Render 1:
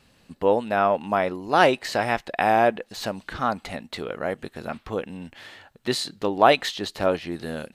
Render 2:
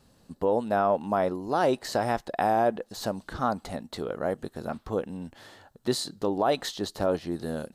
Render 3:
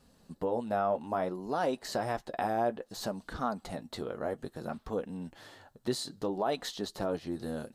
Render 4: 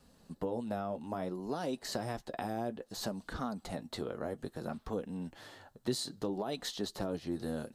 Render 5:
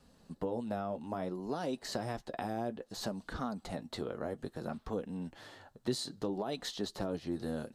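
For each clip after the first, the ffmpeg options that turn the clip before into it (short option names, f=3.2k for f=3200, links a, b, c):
-af "equalizer=f=2.4k:w=1.2:g=-13,alimiter=limit=-14dB:level=0:latency=1:release=57"
-filter_complex "[0:a]asplit=2[a][b];[b]acompressor=threshold=-33dB:ratio=6,volume=-0.5dB[c];[a][c]amix=inputs=2:normalize=0,flanger=delay=4.1:depth=4.5:regen=-43:speed=0.6:shape=sinusoidal,volume=-4.5dB"
-filter_complex "[0:a]acrossover=split=350|3000[a][b][c];[b]acompressor=threshold=-38dB:ratio=6[d];[a][d][c]amix=inputs=3:normalize=0"
-af "highshelf=f=11k:g=-8"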